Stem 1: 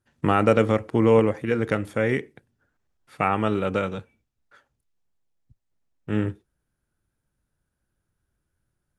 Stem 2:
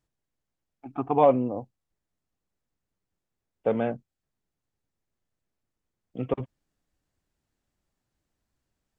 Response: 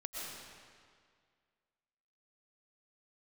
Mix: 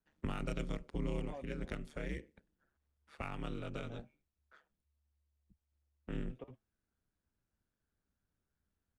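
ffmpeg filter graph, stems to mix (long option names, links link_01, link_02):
-filter_complex "[0:a]adynamicsmooth=sensitivity=5:basefreq=7700,aeval=exprs='val(0)*sin(2*PI*72*n/s)':channel_layout=same,volume=-6dB[link_01];[1:a]flanger=delay=5.6:depth=3.5:regen=-77:speed=0.74:shape=sinusoidal,adelay=100,volume=-12dB[link_02];[link_01][link_02]amix=inputs=2:normalize=0,equalizer=frequency=140:width_type=o:width=0.44:gain=-6.5,acrossover=split=180|3000[link_03][link_04][link_05];[link_04]acompressor=threshold=-46dB:ratio=4[link_06];[link_03][link_06][link_05]amix=inputs=3:normalize=0"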